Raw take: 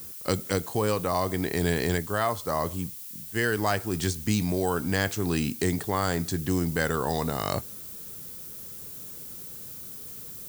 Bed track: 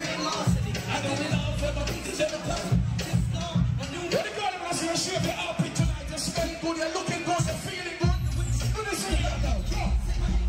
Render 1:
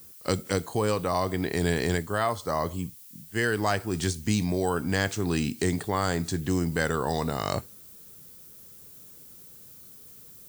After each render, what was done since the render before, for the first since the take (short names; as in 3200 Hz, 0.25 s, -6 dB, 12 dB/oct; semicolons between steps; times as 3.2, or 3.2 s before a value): noise print and reduce 8 dB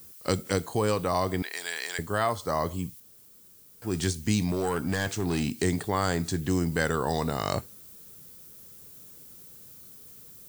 1.42–1.99 HPF 1200 Hz; 3–3.82 room tone; 4.48–5.57 overloaded stage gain 21.5 dB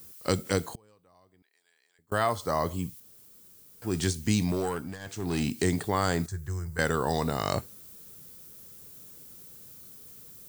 0.71–2.12 flipped gate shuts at -28 dBFS, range -35 dB; 4.56–5.42 dip -16 dB, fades 0.43 s; 6.26–6.79 EQ curve 110 Hz 0 dB, 260 Hz -28 dB, 370 Hz -13 dB, 630 Hz -16 dB, 1500 Hz -5 dB, 3000 Hz -21 dB, 6300 Hz -9 dB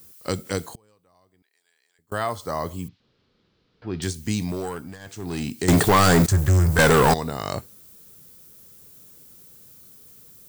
0.54–2.13 bell 9500 Hz +2.5 dB 2.6 oct; 2.88–4.02 steep low-pass 4300 Hz; 5.68–7.14 sample leveller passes 5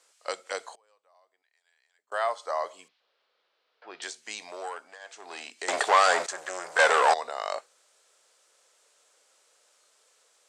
elliptic band-pass 590–8100 Hz, stop band 70 dB; high shelf 4300 Hz -8 dB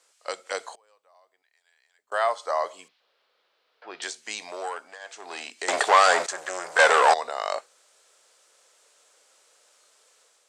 AGC gain up to 4 dB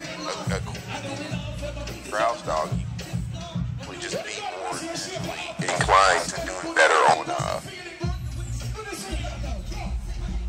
add bed track -4 dB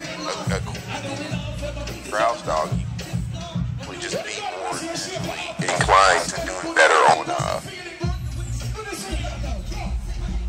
gain +3 dB; limiter -2 dBFS, peak gain reduction 1.5 dB